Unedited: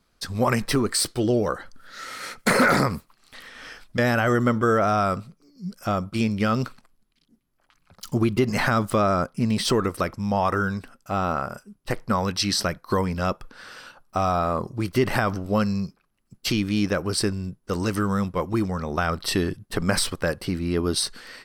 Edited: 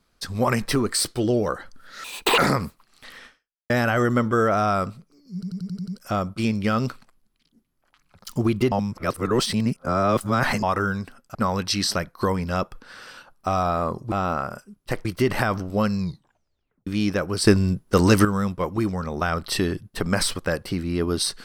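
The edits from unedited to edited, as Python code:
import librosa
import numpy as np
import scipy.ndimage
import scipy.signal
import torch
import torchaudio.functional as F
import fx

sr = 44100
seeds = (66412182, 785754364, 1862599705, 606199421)

y = fx.edit(x, sr, fx.speed_span(start_s=2.04, length_s=0.64, speed=1.89),
    fx.fade_out_span(start_s=3.55, length_s=0.45, curve='exp'),
    fx.stutter(start_s=5.64, slice_s=0.09, count=7),
    fx.reverse_span(start_s=8.48, length_s=1.91),
    fx.move(start_s=11.11, length_s=0.93, to_s=14.81),
    fx.tape_stop(start_s=15.75, length_s=0.88),
    fx.clip_gain(start_s=17.23, length_s=0.78, db=9.0), tone=tone)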